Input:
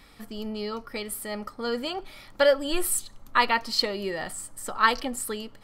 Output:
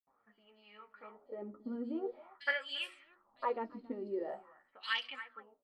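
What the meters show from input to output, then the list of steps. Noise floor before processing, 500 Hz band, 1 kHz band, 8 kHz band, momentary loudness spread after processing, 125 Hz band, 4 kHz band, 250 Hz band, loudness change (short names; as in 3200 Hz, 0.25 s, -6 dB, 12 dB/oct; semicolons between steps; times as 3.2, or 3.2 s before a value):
-52 dBFS, -14.0 dB, -16.0 dB, under -35 dB, 19 LU, under -15 dB, -12.0 dB, -10.0 dB, -12.5 dB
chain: ending faded out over 0.57 s; on a send: echo 0.276 s -15.5 dB; on the sum: wah 0.46 Hz 250–2900 Hz, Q 4.2; flange 0.59 Hz, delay 7.2 ms, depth 8.4 ms, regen +35%; notches 60/120/180/240/300/360/420 Hz; low-pass opened by the level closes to 600 Hz, open at -37.5 dBFS; bands offset in time highs, lows 70 ms, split 3700 Hz; gain +4 dB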